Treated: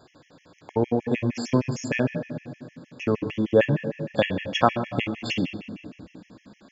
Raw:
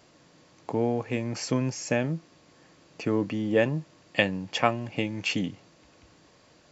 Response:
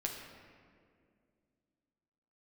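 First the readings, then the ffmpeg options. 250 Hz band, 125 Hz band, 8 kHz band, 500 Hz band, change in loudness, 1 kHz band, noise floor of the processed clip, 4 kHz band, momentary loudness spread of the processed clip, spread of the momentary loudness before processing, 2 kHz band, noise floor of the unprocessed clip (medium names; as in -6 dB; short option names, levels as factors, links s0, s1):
+3.0 dB, +3.5 dB, no reading, +4.0 dB, +3.0 dB, +4.5 dB, -62 dBFS, +1.0 dB, 17 LU, 9 LU, +0.5 dB, -59 dBFS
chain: -filter_complex "[0:a]asplit=2[s0][s1];[1:a]atrim=start_sample=2205,asetrate=43659,aresample=44100,lowpass=4600[s2];[s1][s2]afir=irnorm=-1:irlink=0,volume=1.06[s3];[s0][s3]amix=inputs=2:normalize=0,afftfilt=real='re*gt(sin(2*PI*6.5*pts/sr)*(1-2*mod(floor(b*sr/1024/1700),2)),0)':imag='im*gt(sin(2*PI*6.5*pts/sr)*(1-2*mod(floor(b*sr/1024/1700),2)),0)':win_size=1024:overlap=0.75"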